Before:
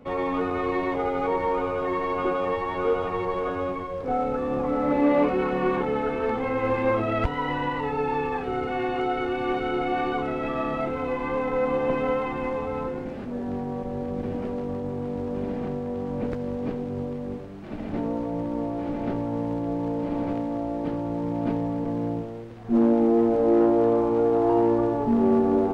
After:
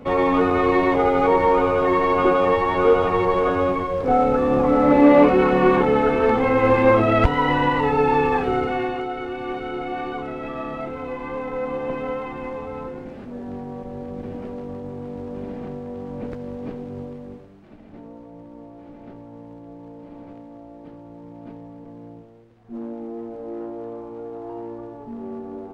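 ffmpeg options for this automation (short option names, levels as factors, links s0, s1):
-af "volume=2.51,afade=t=out:st=8.4:d=0.66:silence=0.298538,afade=t=out:st=16.97:d=0.84:silence=0.298538"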